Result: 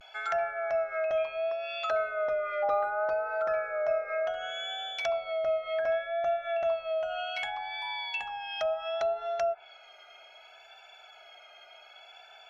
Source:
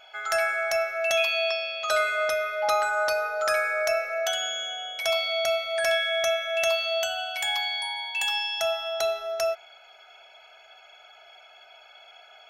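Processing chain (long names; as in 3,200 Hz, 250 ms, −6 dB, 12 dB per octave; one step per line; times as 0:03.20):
pitch vibrato 0.67 Hz 55 cents
treble cut that deepens with the level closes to 980 Hz, closed at −23 dBFS
level −1.5 dB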